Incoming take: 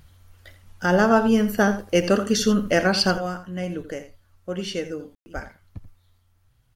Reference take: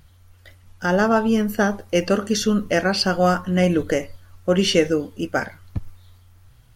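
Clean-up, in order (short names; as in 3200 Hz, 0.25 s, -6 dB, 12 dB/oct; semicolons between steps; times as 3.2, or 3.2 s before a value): 5.34–5.46 HPF 140 Hz 24 dB/oct; room tone fill 5.15–5.26; inverse comb 84 ms -13 dB; gain 0 dB, from 3.18 s +11.5 dB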